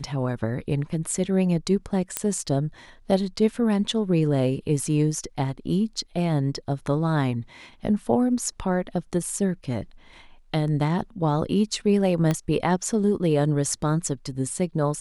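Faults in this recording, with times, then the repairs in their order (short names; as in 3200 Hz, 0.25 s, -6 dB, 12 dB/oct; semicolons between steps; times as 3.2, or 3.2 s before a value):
2.17 pop -7 dBFS
12.31 pop -11 dBFS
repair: de-click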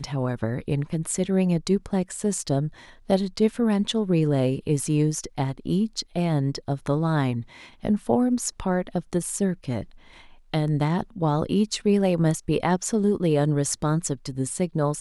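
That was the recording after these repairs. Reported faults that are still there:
12.31 pop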